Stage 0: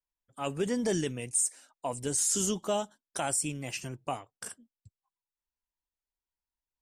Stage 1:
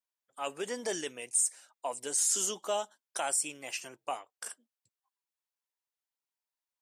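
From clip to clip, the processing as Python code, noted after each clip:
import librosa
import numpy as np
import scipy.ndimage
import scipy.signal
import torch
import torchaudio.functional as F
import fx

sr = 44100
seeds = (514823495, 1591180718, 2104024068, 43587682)

y = scipy.signal.sosfilt(scipy.signal.butter(2, 520.0, 'highpass', fs=sr, output='sos'), x)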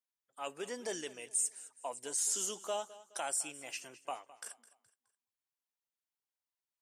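y = fx.echo_feedback(x, sr, ms=210, feedback_pct=36, wet_db=-18.0)
y = y * librosa.db_to_amplitude(-5.0)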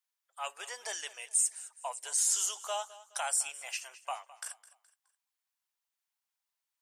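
y = scipy.signal.sosfilt(scipy.signal.butter(4, 710.0, 'highpass', fs=sr, output='sos'), x)
y = y * librosa.db_to_amplitude(5.0)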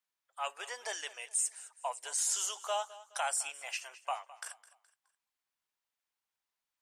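y = fx.high_shelf(x, sr, hz=5000.0, db=-8.0)
y = y * librosa.db_to_amplitude(2.0)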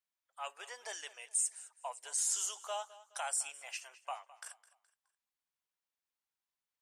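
y = fx.dynamic_eq(x, sr, hz=8500.0, q=0.91, threshold_db=-45.0, ratio=4.0, max_db=5)
y = y * librosa.db_to_amplitude(-5.5)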